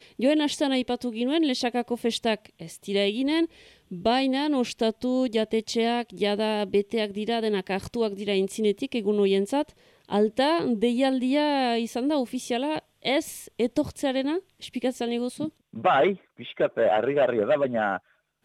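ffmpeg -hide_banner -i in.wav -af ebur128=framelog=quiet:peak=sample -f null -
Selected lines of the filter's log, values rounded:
Integrated loudness:
  I:         -25.7 LUFS
  Threshold: -36.0 LUFS
Loudness range:
  LRA:         2.3 LU
  Threshold: -46.1 LUFS
  LRA low:   -27.2 LUFS
  LRA high:  -24.9 LUFS
Sample peak:
  Peak:      -11.2 dBFS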